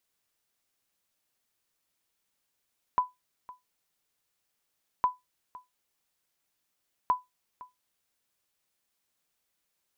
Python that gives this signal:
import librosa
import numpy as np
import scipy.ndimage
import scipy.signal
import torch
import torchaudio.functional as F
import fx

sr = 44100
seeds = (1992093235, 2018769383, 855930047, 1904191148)

y = fx.sonar_ping(sr, hz=999.0, decay_s=0.18, every_s=2.06, pings=3, echo_s=0.51, echo_db=-20.5, level_db=-16.0)